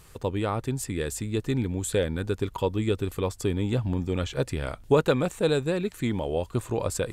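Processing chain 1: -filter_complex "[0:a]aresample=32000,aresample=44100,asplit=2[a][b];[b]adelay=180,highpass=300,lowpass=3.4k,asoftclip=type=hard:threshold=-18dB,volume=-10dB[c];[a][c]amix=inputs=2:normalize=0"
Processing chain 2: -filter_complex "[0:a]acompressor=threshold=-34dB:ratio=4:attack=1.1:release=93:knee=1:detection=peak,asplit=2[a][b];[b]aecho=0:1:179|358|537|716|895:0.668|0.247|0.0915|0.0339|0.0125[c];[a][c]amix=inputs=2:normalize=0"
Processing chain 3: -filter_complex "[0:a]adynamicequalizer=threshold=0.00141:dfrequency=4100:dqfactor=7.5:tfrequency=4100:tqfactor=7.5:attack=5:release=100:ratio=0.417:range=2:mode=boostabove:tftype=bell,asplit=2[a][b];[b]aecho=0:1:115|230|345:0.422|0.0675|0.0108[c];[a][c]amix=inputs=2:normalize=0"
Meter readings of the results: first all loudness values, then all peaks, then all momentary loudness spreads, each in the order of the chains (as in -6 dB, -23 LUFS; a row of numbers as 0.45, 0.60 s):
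-27.5, -36.5, -27.0 LUFS; -8.5, -23.0, -8.5 dBFS; 6, 2, 5 LU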